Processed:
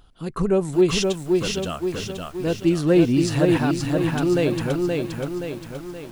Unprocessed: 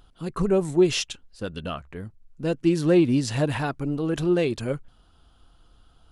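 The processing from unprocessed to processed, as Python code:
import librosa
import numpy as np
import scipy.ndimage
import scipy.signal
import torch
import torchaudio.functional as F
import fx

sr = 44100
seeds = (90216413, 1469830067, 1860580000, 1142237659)

y = fx.cheby1_bandstop(x, sr, low_hz=290.0, high_hz=720.0, order=4, at=(3.73, 4.18))
y = fx.echo_crushed(y, sr, ms=524, feedback_pct=55, bits=8, wet_db=-3)
y = y * 10.0 ** (1.5 / 20.0)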